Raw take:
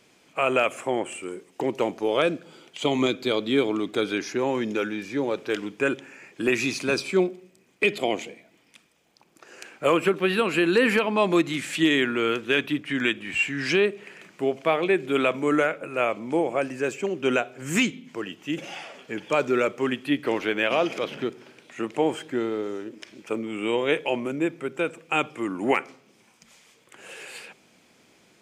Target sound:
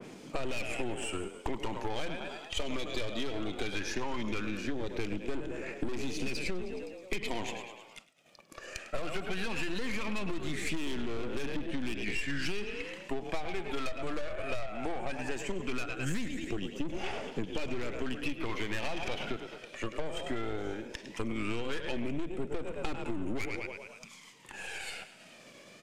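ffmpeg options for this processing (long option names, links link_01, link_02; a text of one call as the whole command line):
ffmpeg -i in.wav -filter_complex "[0:a]acrossover=split=130|3800[link_01][link_02][link_03];[link_01]acrusher=bits=3:mix=0:aa=0.000001[link_04];[link_02]aphaser=in_gain=1:out_gain=1:delay=1.8:decay=0.65:speed=0.16:type=triangular[link_05];[link_04][link_05][link_03]amix=inputs=3:normalize=0,asplit=7[link_06][link_07][link_08][link_09][link_10][link_11][link_12];[link_07]adelay=115,afreqshift=37,volume=-12dB[link_13];[link_08]adelay=230,afreqshift=74,volume=-17.4dB[link_14];[link_09]adelay=345,afreqshift=111,volume=-22.7dB[link_15];[link_10]adelay=460,afreqshift=148,volume=-28.1dB[link_16];[link_11]adelay=575,afreqshift=185,volume=-33.4dB[link_17];[link_12]adelay=690,afreqshift=222,volume=-38.8dB[link_18];[link_06][link_13][link_14][link_15][link_16][link_17][link_18]amix=inputs=7:normalize=0,aeval=exprs='(tanh(17.8*val(0)+0.5)-tanh(0.5))/17.8':channel_layout=same,acompressor=mode=upward:threshold=-40dB:ratio=2.5,aemphasis=mode=reproduction:type=bsi,agate=range=-33dB:threshold=-46dB:ratio=3:detection=peak,crystalizer=i=2:c=0,acompressor=threshold=-27dB:ratio=10,atempo=1.1,adynamicequalizer=threshold=0.00224:dfrequency=1800:dqfactor=0.7:tfrequency=1800:tqfactor=0.7:attack=5:release=100:ratio=0.375:range=1.5:mode=boostabove:tftype=highshelf,volume=-1.5dB" out.wav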